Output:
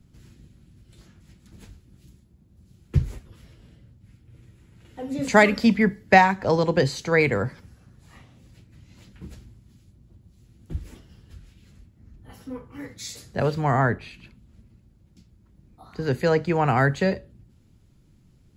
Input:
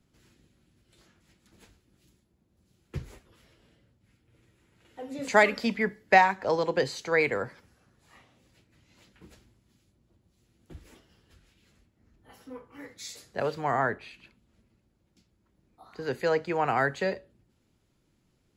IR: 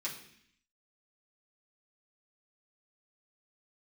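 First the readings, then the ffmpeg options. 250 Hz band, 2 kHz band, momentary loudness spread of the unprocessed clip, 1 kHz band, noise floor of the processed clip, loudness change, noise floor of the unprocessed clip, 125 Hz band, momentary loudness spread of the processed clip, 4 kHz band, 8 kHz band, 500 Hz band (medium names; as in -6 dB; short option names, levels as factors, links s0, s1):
+10.5 dB, +3.5 dB, 20 LU, +3.5 dB, -58 dBFS, +5.0 dB, -71 dBFS, +14.5 dB, 20 LU, +4.5 dB, +5.5 dB, +4.5 dB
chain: -af "bass=f=250:g=13,treble=f=4000:g=2,volume=1.5"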